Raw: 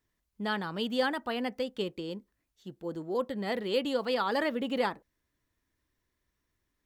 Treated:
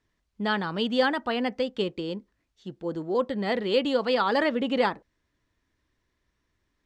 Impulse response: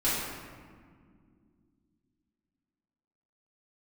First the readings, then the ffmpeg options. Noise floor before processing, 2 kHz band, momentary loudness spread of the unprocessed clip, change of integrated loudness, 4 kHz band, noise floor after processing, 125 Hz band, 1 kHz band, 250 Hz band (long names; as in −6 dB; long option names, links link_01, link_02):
−82 dBFS, +5.5 dB, 11 LU, +5.5 dB, +5.0 dB, −77 dBFS, +5.5 dB, +5.5 dB, +5.5 dB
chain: -af "lowpass=5900,volume=5.5dB"